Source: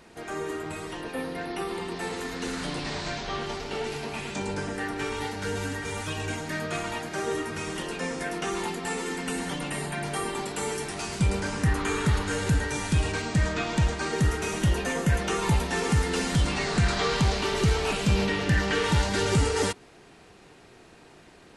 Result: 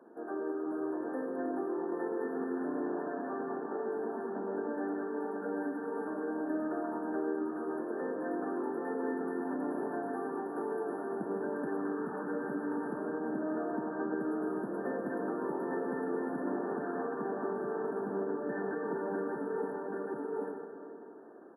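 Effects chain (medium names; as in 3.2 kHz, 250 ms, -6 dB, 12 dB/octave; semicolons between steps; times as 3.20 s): steep high-pass 260 Hz 36 dB/octave; tilt EQ -4.5 dB/octave; on a send: delay 783 ms -7 dB; on the sum: compression, threshold -27 dBFS, peak gain reduction 9.5 dB; FFT band-reject 1.8–10 kHz; algorithmic reverb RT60 2.5 s, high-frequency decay 0.6×, pre-delay 45 ms, DRR 3 dB; trim -6.5 dB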